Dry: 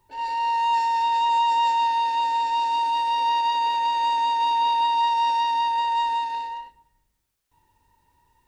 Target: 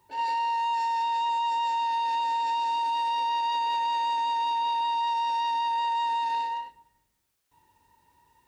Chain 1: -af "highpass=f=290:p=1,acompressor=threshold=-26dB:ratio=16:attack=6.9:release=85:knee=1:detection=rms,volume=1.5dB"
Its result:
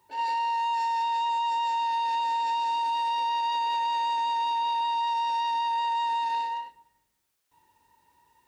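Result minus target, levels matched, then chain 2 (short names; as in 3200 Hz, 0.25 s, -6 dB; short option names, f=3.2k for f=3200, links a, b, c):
125 Hz band -5.0 dB
-af "highpass=f=130:p=1,acompressor=threshold=-26dB:ratio=16:attack=6.9:release=85:knee=1:detection=rms,volume=1.5dB"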